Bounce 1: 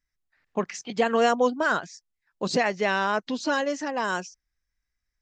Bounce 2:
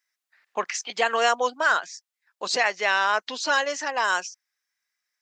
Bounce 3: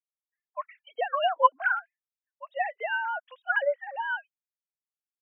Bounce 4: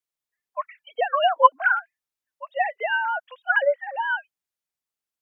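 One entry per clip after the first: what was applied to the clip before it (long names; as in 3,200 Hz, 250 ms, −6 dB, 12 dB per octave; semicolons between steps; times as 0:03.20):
Bessel high-pass filter 980 Hz, order 2; in parallel at −2.5 dB: speech leveller within 3 dB; on the sum: level +1.5 dB
three sine waves on the formant tracks; every bin expanded away from the loudest bin 1.5 to 1; level −2 dB
pitch vibrato 3.5 Hz 13 cents; level +5.5 dB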